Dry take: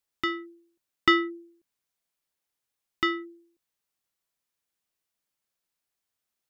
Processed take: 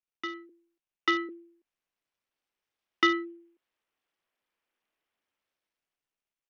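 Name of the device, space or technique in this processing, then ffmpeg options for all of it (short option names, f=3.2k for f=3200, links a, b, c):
Bluetooth headset: -filter_complex "[0:a]asettb=1/sr,asplit=3[a][b][c];[a]atrim=end=0.494[d];[b]atrim=start=0.49:end=1.29,asetpts=PTS-STARTPTS,afade=t=in:d=0.004:c=qsin,afade=t=out:st=0.796:d=0.004:c=qsin,highpass=f=290:w=0.5412,highpass=f=290:w=1.3066[e];[c]atrim=start=1.286[f];[d][e]acrossfade=d=0.004:c1=hsin:c2=qsin[g];[g][f]acrossfade=d=0.004:c1=qsin:c2=hsin,highpass=f=240:w=0.5412,highpass=f=240:w=1.3066,dynaudnorm=f=270:g=11:m=14.5dB,aresample=8000,aresample=44100,volume=-7.5dB" -ar 48000 -c:a sbc -b:a 64k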